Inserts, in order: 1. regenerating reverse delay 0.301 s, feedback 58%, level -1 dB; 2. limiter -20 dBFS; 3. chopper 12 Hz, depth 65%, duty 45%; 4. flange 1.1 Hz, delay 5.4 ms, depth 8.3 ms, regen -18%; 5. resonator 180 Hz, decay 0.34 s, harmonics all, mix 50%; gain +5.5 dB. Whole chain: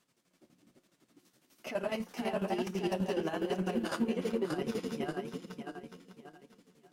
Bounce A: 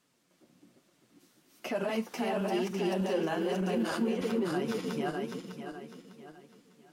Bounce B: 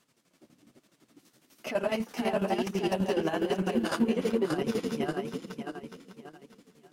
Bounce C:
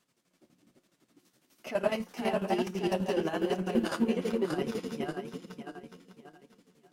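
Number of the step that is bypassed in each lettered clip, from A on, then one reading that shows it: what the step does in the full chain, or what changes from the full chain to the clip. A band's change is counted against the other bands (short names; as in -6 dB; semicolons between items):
3, crest factor change -2.0 dB; 5, loudness change +5.0 LU; 2, mean gain reduction 1.5 dB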